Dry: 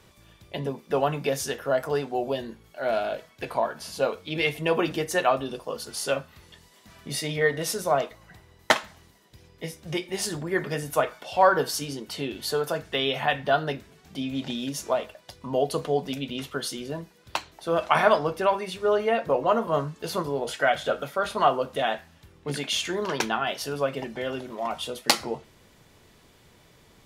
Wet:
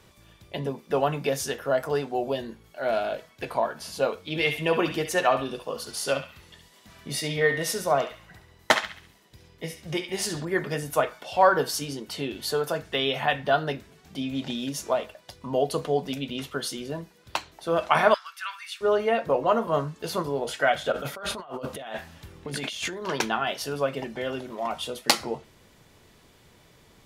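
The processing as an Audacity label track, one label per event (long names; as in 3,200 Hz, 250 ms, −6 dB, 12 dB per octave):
4.270000	10.450000	feedback echo with a band-pass in the loop 68 ms, feedback 44%, band-pass 2,600 Hz, level −6.5 dB
18.140000	18.810000	elliptic high-pass filter 1,300 Hz, stop band 80 dB
20.920000	23.080000	compressor whose output falls as the input rises −35 dBFS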